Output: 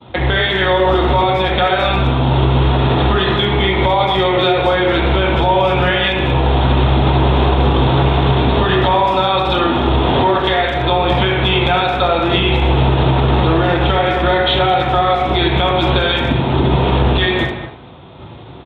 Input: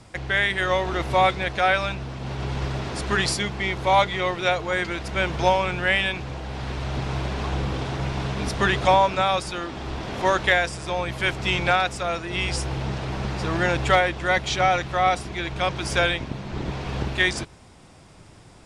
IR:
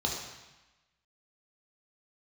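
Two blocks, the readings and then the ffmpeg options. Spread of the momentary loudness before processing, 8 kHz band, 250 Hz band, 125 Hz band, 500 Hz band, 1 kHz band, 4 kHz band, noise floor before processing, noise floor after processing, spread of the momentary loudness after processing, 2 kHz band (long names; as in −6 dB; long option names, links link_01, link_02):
11 LU, below −15 dB, +13.5 dB, +13.5 dB, +10.5 dB, +8.5 dB, +10.5 dB, −49 dBFS, −34 dBFS, 2 LU, +4.5 dB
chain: -filter_complex "[0:a]agate=range=-33dB:threshold=-43dB:ratio=3:detection=peak,lowshelf=frequency=110:gain=-7.5,acompressor=threshold=-27dB:ratio=20,acrusher=bits=5:mode=log:mix=0:aa=0.000001[link_01];[1:a]atrim=start_sample=2205,afade=type=out:start_time=0.32:duration=0.01,atrim=end_sample=14553[link_02];[link_01][link_02]afir=irnorm=-1:irlink=0,aresample=8000,aresample=44100,asplit=2[link_03][link_04];[link_04]adelay=210,highpass=300,lowpass=3400,asoftclip=type=hard:threshold=-18.5dB,volume=-12dB[link_05];[link_03][link_05]amix=inputs=2:normalize=0,alimiter=level_in=14dB:limit=-1dB:release=50:level=0:latency=1,volume=-3.5dB" -ar 48000 -c:a libopus -b:a 128k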